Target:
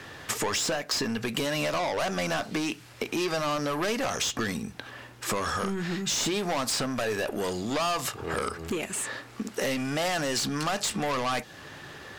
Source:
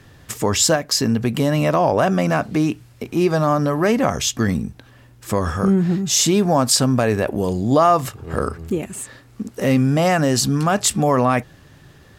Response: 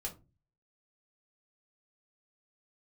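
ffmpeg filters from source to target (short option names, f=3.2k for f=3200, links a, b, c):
-filter_complex "[0:a]asplit=2[a][b];[b]highpass=f=720:p=1,volume=22dB,asoftclip=type=tanh:threshold=-3dB[c];[a][c]amix=inputs=2:normalize=0,lowpass=f=3.7k:p=1,volume=-6dB,acrossover=split=1300|3400[d][e][f];[d]acompressor=threshold=-25dB:ratio=4[g];[e]acompressor=threshold=-32dB:ratio=4[h];[f]acompressor=threshold=-24dB:ratio=4[i];[g][h][i]amix=inputs=3:normalize=0,asplit=2[j][k];[1:a]atrim=start_sample=2205[l];[k][l]afir=irnorm=-1:irlink=0,volume=-15dB[m];[j][m]amix=inputs=2:normalize=0,volume=-6.5dB"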